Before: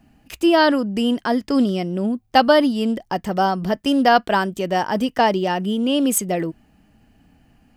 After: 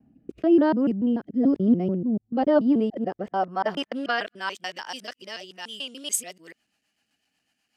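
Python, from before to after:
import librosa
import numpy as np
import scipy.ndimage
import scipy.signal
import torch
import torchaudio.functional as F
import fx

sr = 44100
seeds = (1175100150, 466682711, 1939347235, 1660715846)

y = fx.local_reverse(x, sr, ms=145.0)
y = fx.rotary_switch(y, sr, hz=1.0, then_hz=8.0, switch_at_s=5.68)
y = fx.filter_sweep_bandpass(y, sr, from_hz=240.0, to_hz=5600.0, start_s=2.38, end_s=4.98, q=0.74)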